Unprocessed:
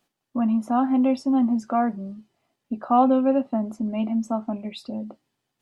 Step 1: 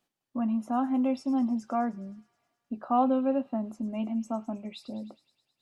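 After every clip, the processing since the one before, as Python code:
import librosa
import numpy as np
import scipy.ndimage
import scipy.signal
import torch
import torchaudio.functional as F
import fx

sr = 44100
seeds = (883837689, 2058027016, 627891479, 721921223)

y = fx.echo_wet_highpass(x, sr, ms=105, feedback_pct=70, hz=3400.0, wet_db=-12.0)
y = y * librosa.db_to_amplitude(-6.5)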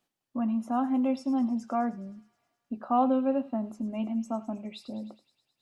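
y = x + 10.0 ** (-19.5 / 20.0) * np.pad(x, (int(84 * sr / 1000.0), 0))[:len(x)]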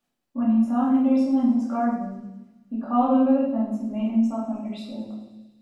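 y = fx.room_shoebox(x, sr, seeds[0], volume_m3=310.0, walls='mixed', distance_m=2.4)
y = y * librosa.db_to_amplitude(-4.0)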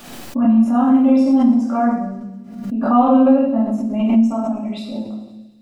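y = fx.pre_swell(x, sr, db_per_s=64.0)
y = y * librosa.db_to_amplitude(6.5)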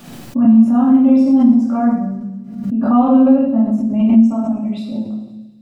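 y = fx.peak_eq(x, sr, hz=140.0, db=12.0, octaves=1.8)
y = y * librosa.db_to_amplitude(-3.5)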